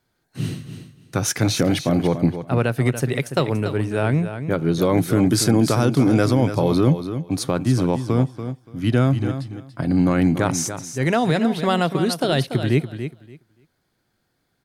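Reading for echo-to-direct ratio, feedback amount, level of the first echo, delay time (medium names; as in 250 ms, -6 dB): -10.0 dB, 18%, -10.0 dB, 287 ms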